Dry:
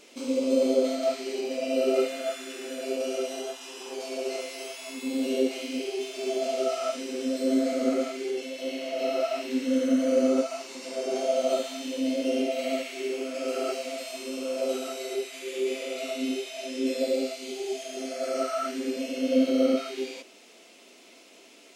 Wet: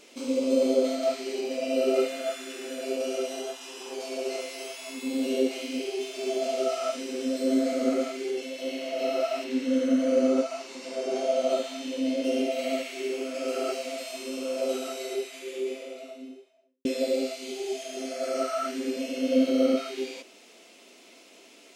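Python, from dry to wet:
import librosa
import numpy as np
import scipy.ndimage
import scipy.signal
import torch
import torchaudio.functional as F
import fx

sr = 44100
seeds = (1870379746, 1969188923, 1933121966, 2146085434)

y = fx.high_shelf(x, sr, hz=8500.0, db=-8.5, at=(9.44, 12.24))
y = fx.studio_fade_out(y, sr, start_s=15.01, length_s=1.84)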